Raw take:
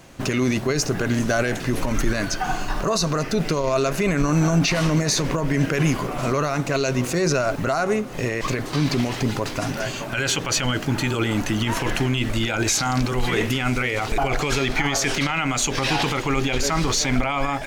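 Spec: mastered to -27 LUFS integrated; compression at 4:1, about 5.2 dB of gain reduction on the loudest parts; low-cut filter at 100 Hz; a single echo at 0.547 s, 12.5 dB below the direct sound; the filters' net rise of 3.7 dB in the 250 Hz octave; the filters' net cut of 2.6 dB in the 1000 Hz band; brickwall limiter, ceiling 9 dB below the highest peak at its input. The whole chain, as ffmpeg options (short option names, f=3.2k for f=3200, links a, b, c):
-af "highpass=100,equalizer=f=250:t=o:g=5,equalizer=f=1k:t=o:g=-4,acompressor=threshold=-20dB:ratio=4,alimiter=limit=-19.5dB:level=0:latency=1,aecho=1:1:547:0.237,volume=1dB"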